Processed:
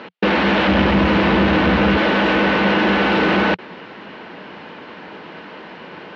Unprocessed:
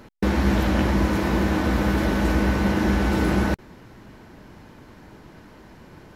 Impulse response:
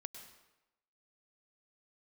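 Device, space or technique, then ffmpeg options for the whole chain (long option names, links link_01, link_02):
overdrive pedal into a guitar cabinet: -filter_complex "[0:a]asettb=1/sr,asplit=3[link_01][link_02][link_03];[link_01]atrim=end=0.684[link_04];[link_02]atrim=start=0.68:end=1.97,asetpts=PTS-STARTPTS,afade=type=in:duration=0.004:curve=qsin,afade=type=out:start_time=1.286:duration=0.004:curve=qsin,equalizer=frequency=74:width=0.56:gain=14[link_05];[link_03]atrim=start=1.966[link_06];[link_04][link_05]acrossfade=duration=0.004:curve1=hsin:curve2=qsin[link_07];[link_07][link_06]acrossfade=duration=0.004:curve1=qsin:curve2=hsin,asplit=2[link_08][link_09];[link_09]highpass=frequency=720:poles=1,volume=21dB,asoftclip=type=tanh:threshold=-8.5dB[link_10];[link_08][link_10]amix=inputs=2:normalize=0,lowpass=frequency=6600:poles=1,volume=-6dB,highpass=110,equalizer=frequency=120:width_type=q:width=4:gain=-8,equalizer=frequency=180:width_type=q:width=4:gain=5,equalizer=frequency=480:width_type=q:width=4:gain=4,equalizer=frequency=2800:width_type=q:width=4:gain=5,lowpass=frequency=4000:width=0.5412,lowpass=frequency=4000:width=1.3066"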